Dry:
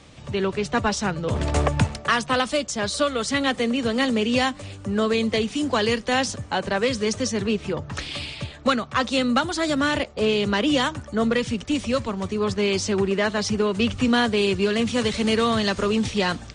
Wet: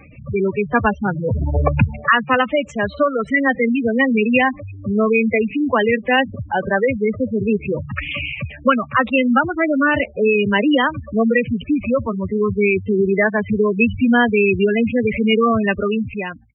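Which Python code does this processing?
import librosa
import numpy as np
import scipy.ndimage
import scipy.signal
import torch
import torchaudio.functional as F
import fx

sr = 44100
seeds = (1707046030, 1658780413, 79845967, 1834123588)

y = fx.fade_out_tail(x, sr, length_s=0.89)
y = fx.high_shelf_res(y, sr, hz=3500.0, db=-11.5, q=3.0)
y = fx.spec_gate(y, sr, threshold_db=-10, keep='strong')
y = y * 10.0 ** (6.0 / 20.0)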